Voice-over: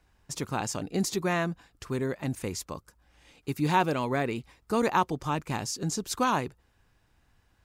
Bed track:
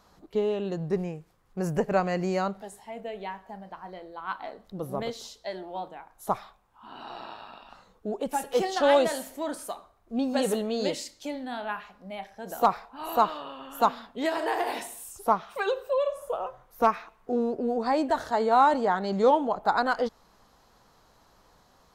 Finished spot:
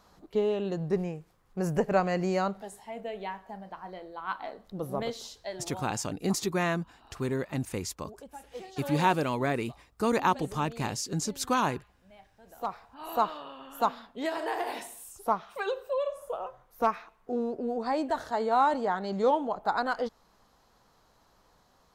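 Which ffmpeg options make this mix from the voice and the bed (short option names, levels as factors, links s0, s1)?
-filter_complex "[0:a]adelay=5300,volume=0.944[s0];[1:a]volume=4.22,afade=t=out:st=5.31:d=0.76:silence=0.149624,afade=t=in:st=12.5:d=0.66:silence=0.223872[s1];[s0][s1]amix=inputs=2:normalize=0"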